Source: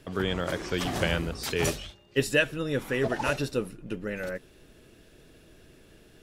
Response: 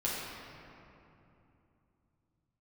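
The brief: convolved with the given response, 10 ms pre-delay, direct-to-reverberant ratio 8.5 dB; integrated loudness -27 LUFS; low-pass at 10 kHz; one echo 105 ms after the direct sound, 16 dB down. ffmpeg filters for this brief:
-filter_complex "[0:a]lowpass=10000,aecho=1:1:105:0.158,asplit=2[s0][s1];[1:a]atrim=start_sample=2205,adelay=10[s2];[s1][s2]afir=irnorm=-1:irlink=0,volume=0.178[s3];[s0][s3]amix=inputs=2:normalize=0,volume=1.26"

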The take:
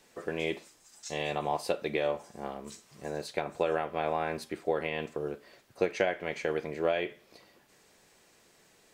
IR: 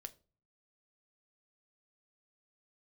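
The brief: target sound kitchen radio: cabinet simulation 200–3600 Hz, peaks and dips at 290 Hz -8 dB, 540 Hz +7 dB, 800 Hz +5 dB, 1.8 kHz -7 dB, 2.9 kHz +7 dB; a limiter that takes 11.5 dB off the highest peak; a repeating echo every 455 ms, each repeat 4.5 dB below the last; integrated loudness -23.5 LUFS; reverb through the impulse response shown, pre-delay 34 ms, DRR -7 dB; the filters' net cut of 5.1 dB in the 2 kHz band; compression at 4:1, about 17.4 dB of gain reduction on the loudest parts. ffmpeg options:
-filter_complex "[0:a]equalizer=f=2000:t=o:g=-6,acompressor=threshold=0.00562:ratio=4,alimiter=level_in=6.31:limit=0.0631:level=0:latency=1,volume=0.158,aecho=1:1:455|910|1365|1820|2275|2730|3185|3640|4095:0.596|0.357|0.214|0.129|0.0772|0.0463|0.0278|0.0167|0.01,asplit=2[s0][s1];[1:a]atrim=start_sample=2205,adelay=34[s2];[s1][s2]afir=irnorm=-1:irlink=0,volume=4.22[s3];[s0][s3]amix=inputs=2:normalize=0,highpass=200,equalizer=f=290:t=q:w=4:g=-8,equalizer=f=540:t=q:w=4:g=7,equalizer=f=800:t=q:w=4:g=5,equalizer=f=1800:t=q:w=4:g=-7,equalizer=f=2900:t=q:w=4:g=7,lowpass=f=3600:w=0.5412,lowpass=f=3600:w=1.3066,volume=7.5"

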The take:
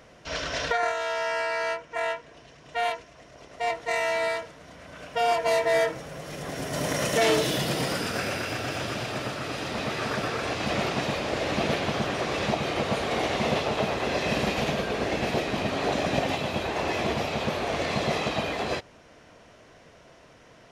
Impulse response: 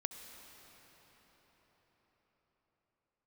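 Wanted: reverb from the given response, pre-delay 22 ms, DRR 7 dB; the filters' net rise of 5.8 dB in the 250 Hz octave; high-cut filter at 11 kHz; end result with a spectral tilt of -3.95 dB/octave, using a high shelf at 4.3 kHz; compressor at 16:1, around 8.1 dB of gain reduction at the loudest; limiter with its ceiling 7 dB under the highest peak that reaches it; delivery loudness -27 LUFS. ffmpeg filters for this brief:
-filter_complex "[0:a]lowpass=11000,equalizer=f=250:t=o:g=7.5,highshelf=f=4300:g=-4,acompressor=threshold=0.0501:ratio=16,alimiter=limit=0.0708:level=0:latency=1,asplit=2[s0][s1];[1:a]atrim=start_sample=2205,adelay=22[s2];[s1][s2]afir=irnorm=-1:irlink=0,volume=0.473[s3];[s0][s3]amix=inputs=2:normalize=0,volume=1.88"

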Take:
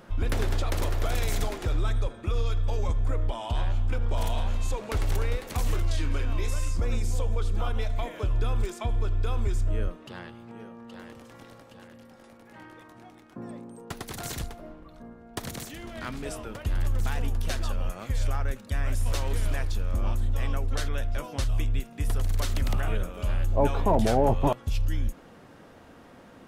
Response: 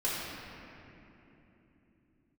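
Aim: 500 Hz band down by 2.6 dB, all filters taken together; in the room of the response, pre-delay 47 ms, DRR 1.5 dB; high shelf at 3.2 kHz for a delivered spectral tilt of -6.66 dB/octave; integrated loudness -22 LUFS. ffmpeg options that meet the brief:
-filter_complex "[0:a]equalizer=f=500:t=o:g=-3,highshelf=f=3200:g=-6.5,asplit=2[s0][s1];[1:a]atrim=start_sample=2205,adelay=47[s2];[s1][s2]afir=irnorm=-1:irlink=0,volume=0.335[s3];[s0][s3]amix=inputs=2:normalize=0,volume=2.24"

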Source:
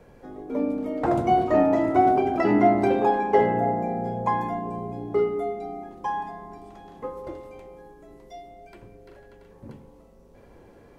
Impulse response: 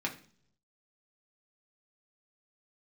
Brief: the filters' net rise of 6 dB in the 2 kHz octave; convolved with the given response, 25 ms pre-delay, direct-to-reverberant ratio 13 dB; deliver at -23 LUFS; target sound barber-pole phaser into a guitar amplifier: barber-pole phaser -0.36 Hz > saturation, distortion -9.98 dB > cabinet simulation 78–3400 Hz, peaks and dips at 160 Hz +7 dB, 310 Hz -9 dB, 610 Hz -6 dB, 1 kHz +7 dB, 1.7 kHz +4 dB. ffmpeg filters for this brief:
-filter_complex "[0:a]equalizer=f=2000:t=o:g=4,asplit=2[s0][s1];[1:a]atrim=start_sample=2205,adelay=25[s2];[s1][s2]afir=irnorm=-1:irlink=0,volume=0.133[s3];[s0][s3]amix=inputs=2:normalize=0,asplit=2[s4][s5];[s5]afreqshift=-0.36[s6];[s4][s6]amix=inputs=2:normalize=1,asoftclip=threshold=0.0708,highpass=78,equalizer=f=160:t=q:w=4:g=7,equalizer=f=310:t=q:w=4:g=-9,equalizer=f=610:t=q:w=4:g=-6,equalizer=f=1000:t=q:w=4:g=7,equalizer=f=1700:t=q:w=4:g=4,lowpass=f=3400:w=0.5412,lowpass=f=3400:w=1.3066,volume=2.37"

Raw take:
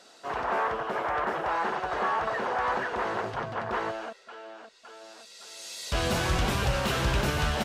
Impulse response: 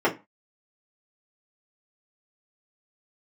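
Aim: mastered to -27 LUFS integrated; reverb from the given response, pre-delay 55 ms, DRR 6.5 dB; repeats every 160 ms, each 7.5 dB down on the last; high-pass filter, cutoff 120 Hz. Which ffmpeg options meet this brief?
-filter_complex "[0:a]highpass=120,aecho=1:1:160|320|480|640|800:0.422|0.177|0.0744|0.0312|0.0131,asplit=2[s0][s1];[1:a]atrim=start_sample=2205,adelay=55[s2];[s1][s2]afir=irnorm=-1:irlink=0,volume=0.0708[s3];[s0][s3]amix=inputs=2:normalize=0,volume=1.06"

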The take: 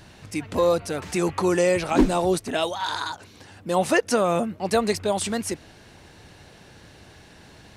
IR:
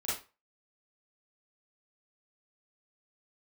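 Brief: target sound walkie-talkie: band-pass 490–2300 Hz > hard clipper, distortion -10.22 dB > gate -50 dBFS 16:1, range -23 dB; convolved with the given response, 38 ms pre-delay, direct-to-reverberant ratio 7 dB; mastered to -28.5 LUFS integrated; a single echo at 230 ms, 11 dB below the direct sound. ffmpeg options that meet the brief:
-filter_complex "[0:a]aecho=1:1:230:0.282,asplit=2[s0][s1];[1:a]atrim=start_sample=2205,adelay=38[s2];[s1][s2]afir=irnorm=-1:irlink=0,volume=0.266[s3];[s0][s3]amix=inputs=2:normalize=0,highpass=490,lowpass=2300,asoftclip=type=hard:threshold=0.075,agate=range=0.0708:threshold=0.00316:ratio=16"

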